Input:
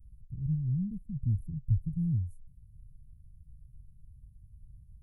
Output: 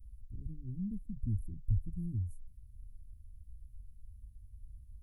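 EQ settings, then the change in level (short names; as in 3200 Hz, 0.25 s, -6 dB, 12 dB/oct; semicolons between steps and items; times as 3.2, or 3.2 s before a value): fixed phaser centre 350 Hz, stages 4; +3.5 dB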